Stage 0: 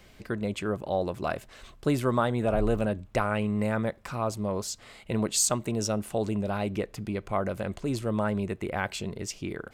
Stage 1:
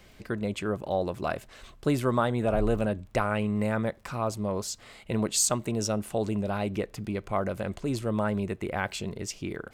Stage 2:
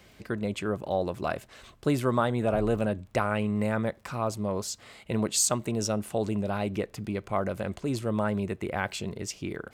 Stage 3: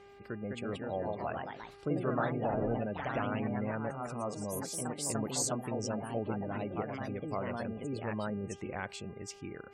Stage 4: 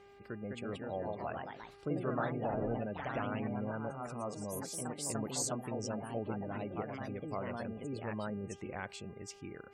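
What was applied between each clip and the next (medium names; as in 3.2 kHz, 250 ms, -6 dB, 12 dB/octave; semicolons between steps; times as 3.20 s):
crackle 22 per s -47 dBFS
high-pass 53 Hz
ever faster or slower copies 240 ms, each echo +2 st, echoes 3; spectral gate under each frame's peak -25 dB strong; mains buzz 400 Hz, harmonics 7, -47 dBFS -7 dB/octave; trim -9 dB
spectral replace 3.56–3.92 s, 1.7–5.2 kHz both; trim -3 dB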